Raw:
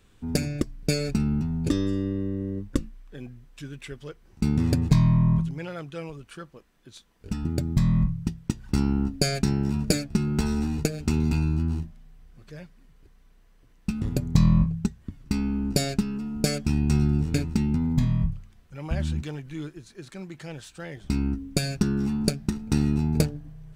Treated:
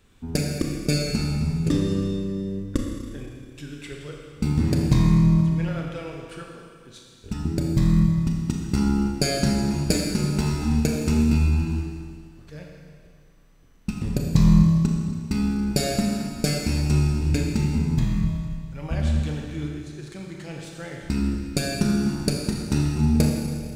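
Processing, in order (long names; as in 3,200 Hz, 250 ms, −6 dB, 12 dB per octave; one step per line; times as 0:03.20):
four-comb reverb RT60 2 s, combs from 27 ms, DRR 0 dB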